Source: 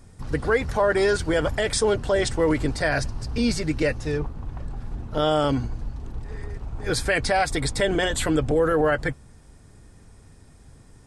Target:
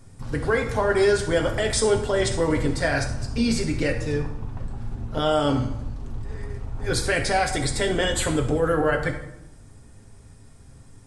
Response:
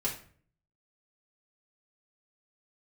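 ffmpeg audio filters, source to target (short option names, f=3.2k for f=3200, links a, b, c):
-filter_complex "[0:a]asplit=2[a][b];[1:a]atrim=start_sample=2205,asetrate=22491,aresample=44100,highshelf=f=7k:g=6.5[c];[b][c]afir=irnorm=-1:irlink=0,volume=-8.5dB[d];[a][d]amix=inputs=2:normalize=0,volume=-5dB"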